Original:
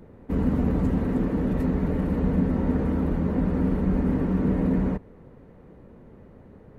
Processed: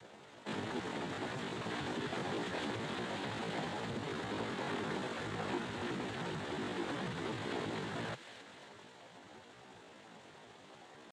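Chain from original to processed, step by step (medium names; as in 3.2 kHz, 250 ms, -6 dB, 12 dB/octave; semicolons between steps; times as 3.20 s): CVSD coder 64 kbps; compression 8:1, threshold -25 dBFS, peak gain reduction 8 dB; band-pass filter 2.8 kHz, Q 0.97; noise-vocoded speech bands 6; tempo 0.61×; feedback echo behind a high-pass 270 ms, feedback 54%, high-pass 2.2 kHz, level -7.5 dB; transformer saturation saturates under 640 Hz; trim +11.5 dB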